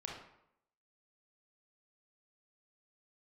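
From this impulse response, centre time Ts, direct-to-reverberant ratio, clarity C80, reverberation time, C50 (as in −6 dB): 46 ms, −2.0 dB, 6.5 dB, 0.75 s, 2.0 dB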